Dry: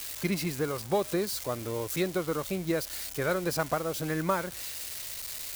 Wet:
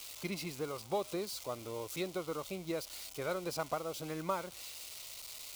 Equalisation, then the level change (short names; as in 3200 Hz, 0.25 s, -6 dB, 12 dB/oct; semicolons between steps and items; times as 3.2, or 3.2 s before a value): low shelf 450 Hz -9.5 dB; bell 1700 Hz -14 dB 0.38 oct; high shelf 6700 Hz -9 dB; -3.0 dB